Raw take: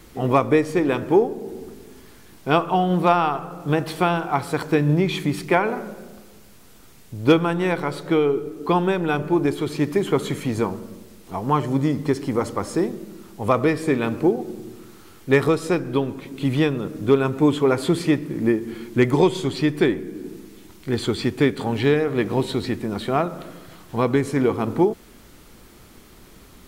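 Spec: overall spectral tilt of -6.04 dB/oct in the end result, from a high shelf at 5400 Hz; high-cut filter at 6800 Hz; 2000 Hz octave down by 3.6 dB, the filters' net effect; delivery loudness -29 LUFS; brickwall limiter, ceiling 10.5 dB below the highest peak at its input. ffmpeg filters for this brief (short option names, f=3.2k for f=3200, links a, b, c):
-af "lowpass=6.8k,equalizer=f=2k:t=o:g=-5.5,highshelf=f=5.4k:g=5.5,volume=-2.5dB,alimiter=limit=-18dB:level=0:latency=1"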